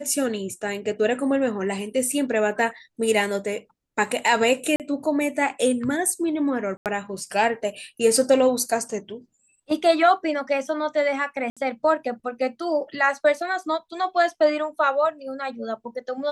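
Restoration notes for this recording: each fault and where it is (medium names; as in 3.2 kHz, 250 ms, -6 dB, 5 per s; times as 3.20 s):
4.76–4.80 s: dropout 38 ms
6.77–6.86 s: dropout 88 ms
11.50–11.57 s: dropout 66 ms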